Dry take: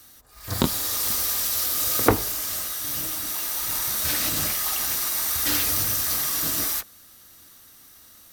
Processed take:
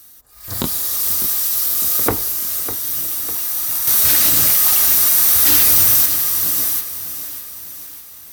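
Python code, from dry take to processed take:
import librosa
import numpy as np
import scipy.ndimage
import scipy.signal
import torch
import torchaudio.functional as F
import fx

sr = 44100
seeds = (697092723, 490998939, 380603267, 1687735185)

y = fx.high_shelf(x, sr, hz=8100.0, db=11.0)
y = fx.leveller(y, sr, passes=2, at=(3.87, 6.06))
y = fx.echo_crushed(y, sr, ms=602, feedback_pct=55, bits=6, wet_db=-12)
y = y * 10.0 ** (-1.5 / 20.0)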